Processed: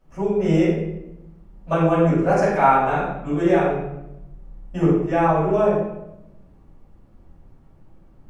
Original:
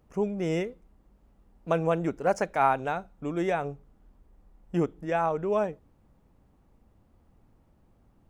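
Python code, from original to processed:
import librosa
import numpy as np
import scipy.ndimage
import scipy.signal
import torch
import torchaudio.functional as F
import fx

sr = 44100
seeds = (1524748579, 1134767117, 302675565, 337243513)

y = fx.high_shelf(x, sr, hz=8400.0, db=-5.0)
y = fx.room_shoebox(y, sr, seeds[0], volume_m3=290.0, walls='mixed', distance_m=6.5)
y = y * 10.0 ** (-7.5 / 20.0)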